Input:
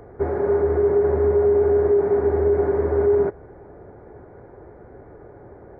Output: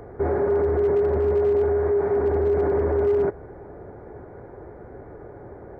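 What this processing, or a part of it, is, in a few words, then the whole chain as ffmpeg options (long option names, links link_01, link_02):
clipper into limiter: -filter_complex "[0:a]asettb=1/sr,asplit=3[link_01][link_02][link_03];[link_01]atrim=end=1.664[link_04];[link_02]atrim=start=1.66:end=2.15,asetpts=PTS-STARTPTS,afade=type=in:duration=0.004:curve=qsin,afade=type=out:start_time=0.486:duration=0.004:curve=qsin,equalizer=frequency=270:width_type=o:width=2.1:gain=-6[link_05];[link_03]atrim=start=2.146[link_06];[link_04][link_05]acrossfade=duration=0.004:curve1=hsin:curve2=qsin[link_07];[link_07][link_06]acrossfade=duration=0.004:curve1=qsin:curve2=hsin,asoftclip=type=hard:threshold=-12.5dB,alimiter=limit=-18dB:level=0:latency=1:release=11,volume=2.5dB"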